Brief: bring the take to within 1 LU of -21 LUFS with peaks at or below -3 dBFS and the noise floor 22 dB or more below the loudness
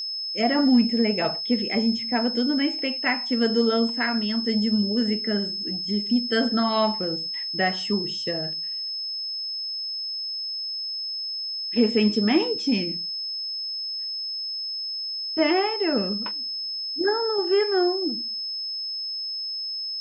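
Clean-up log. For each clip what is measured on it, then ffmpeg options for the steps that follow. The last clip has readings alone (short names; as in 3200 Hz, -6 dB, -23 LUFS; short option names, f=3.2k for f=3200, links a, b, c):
steady tone 5200 Hz; tone level -28 dBFS; loudness -24.0 LUFS; peak -8.5 dBFS; loudness target -21.0 LUFS
-> -af "bandreject=f=5.2k:w=30"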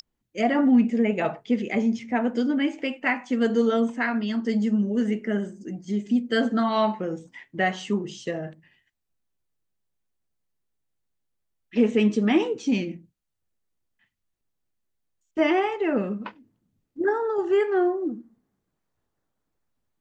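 steady tone none; loudness -24.5 LUFS; peak -9.5 dBFS; loudness target -21.0 LUFS
-> -af "volume=3.5dB"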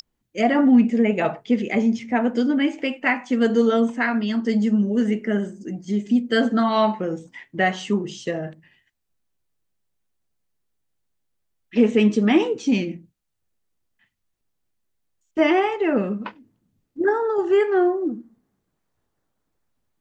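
loudness -21.0 LUFS; peak -6.0 dBFS; noise floor -76 dBFS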